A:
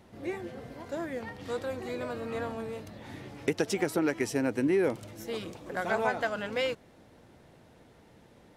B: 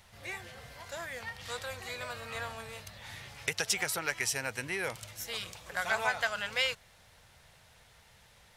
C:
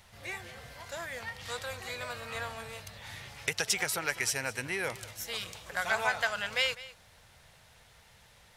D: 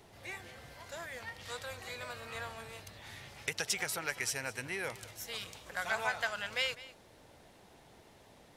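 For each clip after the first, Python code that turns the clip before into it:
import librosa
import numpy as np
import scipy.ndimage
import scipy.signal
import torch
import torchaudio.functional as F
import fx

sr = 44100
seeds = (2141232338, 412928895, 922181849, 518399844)

y1 = fx.tone_stack(x, sr, knobs='10-0-10')
y1 = F.gain(torch.from_numpy(y1), 8.5).numpy()
y2 = y1 + 10.0 ** (-17.5 / 20.0) * np.pad(y1, (int(202 * sr / 1000.0), 0))[:len(y1)]
y2 = F.gain(torch.from_numpy(y2), 1.0).numpy()
y3 = fx.dmg_noise_band(y2, sr, seeds[0], low_hz=93.0, high_hz=850.0, level_db=-57.0)
y3 = F.gain(torch.from_numpy(y3), -4.5).numpy()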